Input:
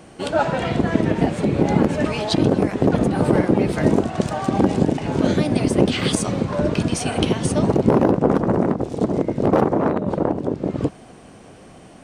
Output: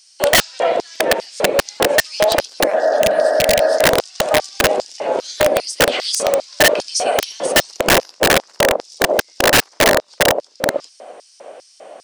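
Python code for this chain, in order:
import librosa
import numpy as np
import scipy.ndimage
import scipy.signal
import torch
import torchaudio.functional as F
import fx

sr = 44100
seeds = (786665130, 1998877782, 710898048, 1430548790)

y = fx.filter_lfo_highpass(x, sr, shape='square', hz=2.5, low_hz=570.0, high_hz=5100.0, q=4.9)
y = fx.highpass(y, sr, hz=170.0, slope=6)
y = fx.high_shelf(y, sr, hz=7900.0, db=-4.0)
y = (np.mod(10.0 ** (8.5 / 20.0) * y + 1.0, 2.0) - 1.0) / 10.0 ** (8.5 / 20.0)
y = fx.spec_repair(y, sr, seeds[0], start_s=2.77, length_s=0.99, low_hz=250.0, high_hz=1900.0, source='after')
y = y * librosa.db_to_amplitude(3.0)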